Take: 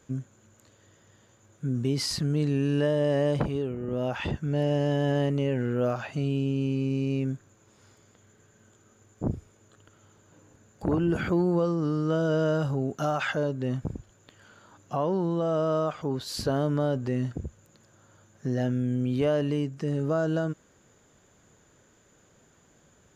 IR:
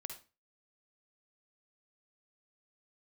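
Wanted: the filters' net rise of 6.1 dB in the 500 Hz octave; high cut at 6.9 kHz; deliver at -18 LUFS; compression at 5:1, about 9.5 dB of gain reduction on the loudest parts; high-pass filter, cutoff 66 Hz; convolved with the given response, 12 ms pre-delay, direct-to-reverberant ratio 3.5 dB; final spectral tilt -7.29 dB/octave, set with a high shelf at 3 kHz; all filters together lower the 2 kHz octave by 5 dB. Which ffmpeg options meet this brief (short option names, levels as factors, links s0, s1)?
-filter_complex "[0:a]highpass=66,lowpass=6900,equalizer=f=500:t=o:g=8,equalizer=f=2000:t=o:g=-5.5,highshelf=f=3000:g=-7,acompressor=threshold=0.0447:ratio=5,asplit=2[s0][s1];[1:a]atrim=start_sample=2205,adelay=12[s2];[s1][s2]afir=irnorm=-1:irlink=0,volume=1[s3];[s0][s3]amix=inputs=2:normalize=0,volume=3.98"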